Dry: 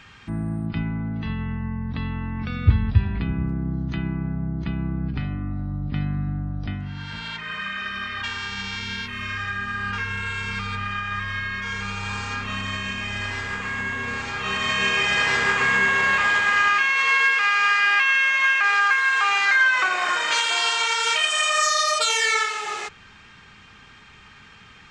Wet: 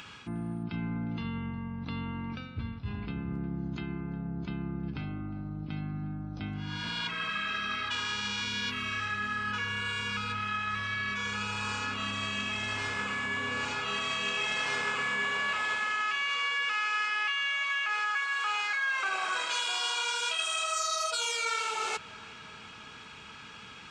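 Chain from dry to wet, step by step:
notch filter 1,800 Hz, Q 5.6
wrong playback speed 24 fps film run at 25 fps
reversed playback
downward compressor 5 to 1, threshold −31 dBFS, peak gain reduction 19 dB
reversed playback
high-pass filter 170 Hz 6 dB per octave
upward compression, threshold −48 dBFS
on a send: feedback echo with a low-pass in the loop 357 ms, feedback 76%, low-pass 3,000 Hz, level −20 dB
on the sum: level +1.5 dB

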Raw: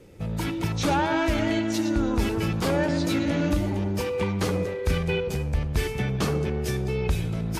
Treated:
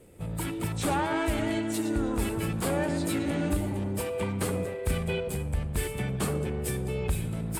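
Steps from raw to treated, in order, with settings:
pitch-shifted copies added +5 semitones −12 dB
high shelf with overshoot 7,100 Hz +6 dB, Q 3
level −4.5 dB

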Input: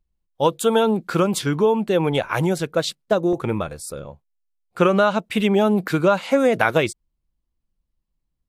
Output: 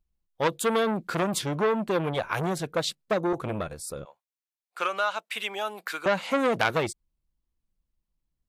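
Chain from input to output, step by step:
0:04.05–0:06.06: high-pass filter 1,000 Hz 12 dB per octave
saturating transformer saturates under 2,100 Hz
level −3.5 dB

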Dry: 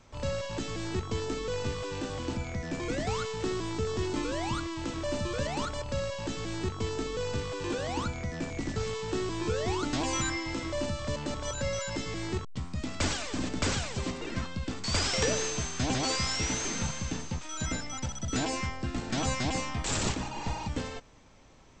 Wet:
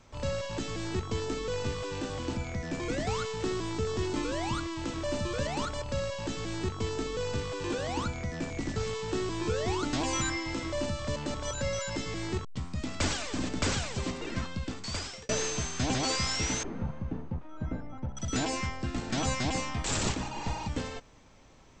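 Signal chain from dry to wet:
0:14.58–0:15.29: fade out
0:16.63–0:18.17: Bessel low-pass filter 710 Hz, order 2

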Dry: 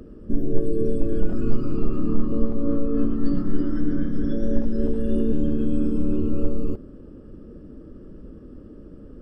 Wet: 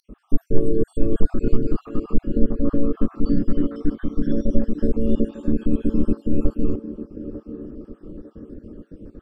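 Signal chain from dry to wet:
time-frequency cells dropped at random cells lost 49%
feedback echo with a band-pass in the loop 898 ms, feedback 44%, band-pass 430 Hz, level −9 dB
level +3.5 dB

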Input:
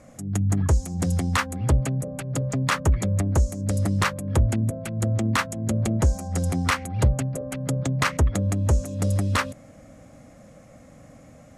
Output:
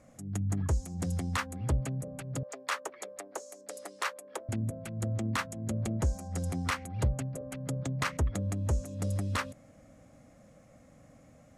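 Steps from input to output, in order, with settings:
0:02.43–0:04.49: high-pass filter 420 Hz 24 dB per octave
level −9 dB

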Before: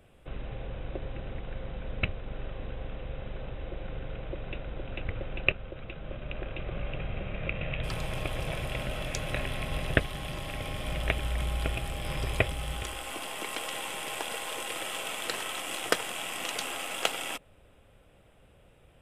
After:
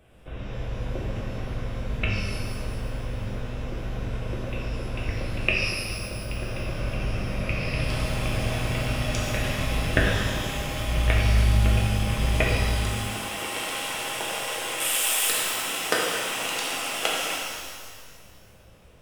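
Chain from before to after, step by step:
0:14.80–0:15.30: RIAA equalisation recording
reverb with rising layers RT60 1.8 s, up +12 semitones, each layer −8 dB, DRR −4 dB

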